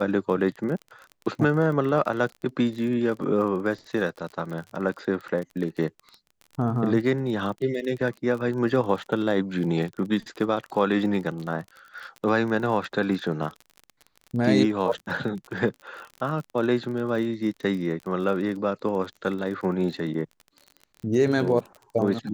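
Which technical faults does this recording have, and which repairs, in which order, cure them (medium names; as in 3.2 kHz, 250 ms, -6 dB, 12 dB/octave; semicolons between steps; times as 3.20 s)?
crackle 35 per s -33 dBFS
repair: de-click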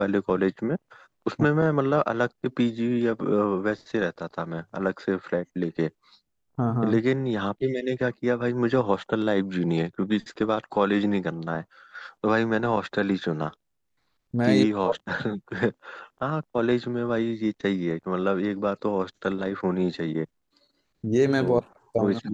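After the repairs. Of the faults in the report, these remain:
nothing left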